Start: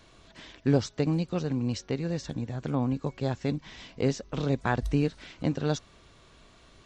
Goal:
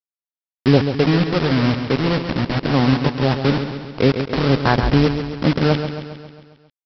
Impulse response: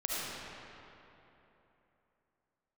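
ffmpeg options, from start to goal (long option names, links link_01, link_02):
-af "lowpass=1900,dynaudnorm=framelen=140:gausssize=5:maxgain=9.5dB,aresample=11025,acrusher=bits=3:mix=0:aa=0.000001,aresample=44100,aecho=1:1:135|270|405|540|675|810|945:0.376|0.218|0.126|0.0733|0.0425|0.0247|0.0143,volume=1.5dB"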